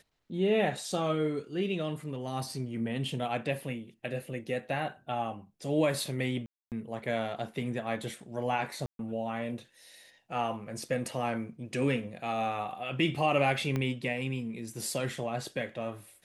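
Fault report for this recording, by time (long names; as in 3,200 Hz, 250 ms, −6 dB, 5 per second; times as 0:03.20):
0:06.46–0:06.72: drop-out 258 ms
0:08.86–0:08.99: drop-out 132 ms
0:13.76: click −19 dBFS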